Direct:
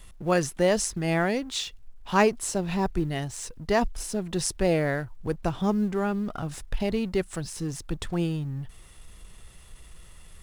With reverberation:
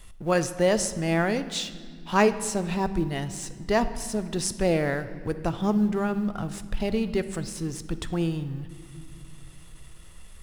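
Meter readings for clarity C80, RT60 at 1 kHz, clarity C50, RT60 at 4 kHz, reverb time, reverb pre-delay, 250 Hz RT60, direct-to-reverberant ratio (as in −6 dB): 14.5 dB, 1.9 s, 13.0 dB, 1.6 s, 2.1 s, 9 ms, 3.5 s, 11.0 dB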